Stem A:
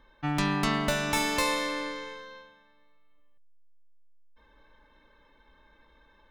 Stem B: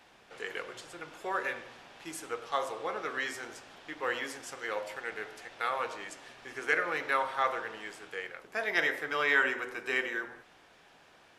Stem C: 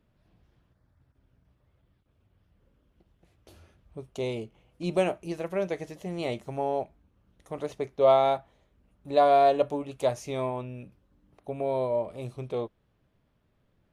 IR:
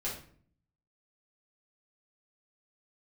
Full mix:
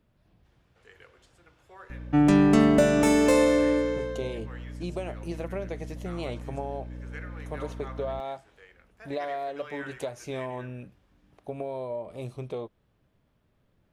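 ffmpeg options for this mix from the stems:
-filter_complex "[0:a]equalizer=frequency=125:width_type=o:width=1:gain=4,equalizer=frequency=250:width_type=o:width=1:gain=9,equalizer=frequency=500:width_type=o:width=1:gain=8,equalizer=frequency=1000:width_type=o:width=1:gain=-11,equalizer=frequency=2000:width_type=o:width=1:gain=-4,equalizer=frequency=4000:width_type=o:width=1:gain=-9,equalizer=frequency=8000:width_type=o:width=1:gain=7,asplit=2[link_01][link_02];[link_02]highpass=frequency=720:poles=1,volume=15dB,asoftclip=type=tanh:threshold=-6dB[link_03];[link_01][link_03]amix=inputs=2:normalize=0,lowpass=frequency=1500:poles=1,volume=-6dB,aeval=exprs='val(0)+0.0112*(sin(2*PI*60*n/s)+sin(2*PI*2*60*n/s)/2+sin(2*PI*3*60*n/s)/3+sin(2*PI*4*60*n/s)/4+sin(2*PI*5*60*n/s)/5)':channel_layout=same,adelay=1900,volume=1.5dB[link_04];[1:a]adelay=450,volume=-15.5dB[link_05];[2:a]acompressor=threshold=-31dB:ratio=12,volume=1dB[link_06];[link_04][link_05][link_06]amix=inputs=3:normalize=0"

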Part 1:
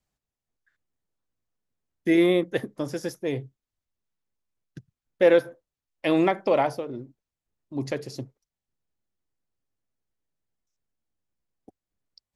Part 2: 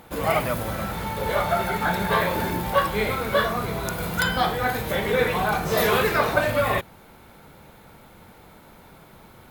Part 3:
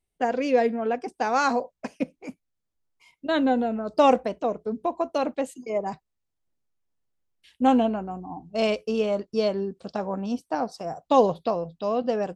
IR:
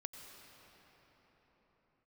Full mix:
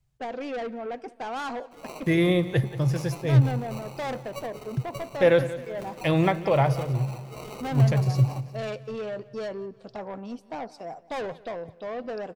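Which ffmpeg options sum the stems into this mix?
-filter_complex "[0:a]lowshelf=frequency=180:width_type=q:width=3:gain=11.5,volume=-0.5dB,asplit=3[link_01][link_02][link_03];[link_02]volume=-15dB[link_04];[link_03]volume=-14.5dB[link_05];[1:a]highpass=210,acrusher=samples=26:mix=1:aa=0.000001,aeval=exprs='sgn(val(0))*max(abs(val(0))-0.0112,0)':channel_layout=same,adelay=1600,volume=-19dB,asplit=2[link_06][link_07];[link_07]volume=-14dB[link_08];[2:a]bass=frequency=250:gain=-6,treble=frequency=4000:gain=-6,asoftclip=type=tanh:threshold=-26dB,volume=-3.5dB,asplit=3[link_09][link_10][link_11];[link_10]volume=-22dB[link_12];[link_11]volume=-21dB[link_13];[3:a]atrim=start_sample=2205[link_14];[link_04][link_12]amix=inputs=2:normalize=0[link_15];[link_15][link_14]afir=irnorm=-1:irlink=0[link_16];[link_05][link_08][link_13]amix=inputs=3:normalize=0,aecho=0:1:180|360|540|720|900|1080:1|0.44|0.194|0.0852|0.0375|0.0165[link_17];[link_01][link_06][link_09][link_16][link_17]amix=inputs=5:normalize=0"

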